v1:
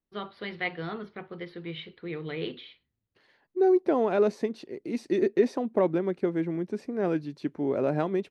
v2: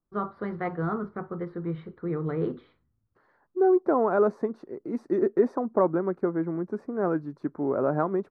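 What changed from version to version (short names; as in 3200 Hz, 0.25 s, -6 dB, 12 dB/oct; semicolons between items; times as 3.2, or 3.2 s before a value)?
first voice: add low shelf 360 Hz +10 dB; master: add resonant high shelf 1900 Hz -14 dB, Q 3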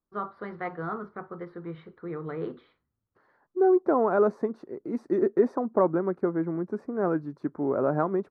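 first voice: add low shelf 360 Hz -10 dB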